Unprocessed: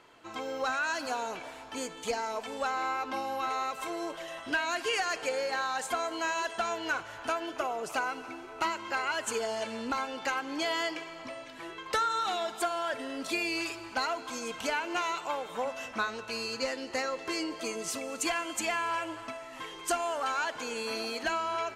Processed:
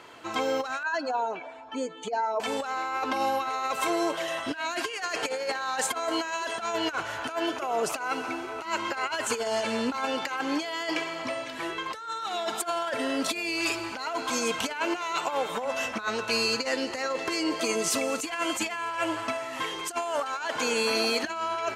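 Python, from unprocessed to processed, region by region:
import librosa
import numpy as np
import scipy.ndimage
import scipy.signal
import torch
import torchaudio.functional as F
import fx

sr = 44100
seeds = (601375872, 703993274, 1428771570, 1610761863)

y = fx.chain(x, sr, fx.spec_expand(power=1.7),
    fx.lowpass(hz=11000.0, slope=12),
    fx.upward_expand(threshold_db=-45.0, expansion=1.5), at=(0.83, 2.4))
y = scipy.signal.sosfilt(scipy.signal.butter(2, 55.0, 'highpass', fs=sr, output='sos'), y)
y = fx.low_shelf(y, sr, hz=320.0, db=-2.0)
y = fx.over_compress(y, sr, threshold_db=-35.0, ratio=-0.5)
y = y * 10.0 ** (7.0 / 20.0)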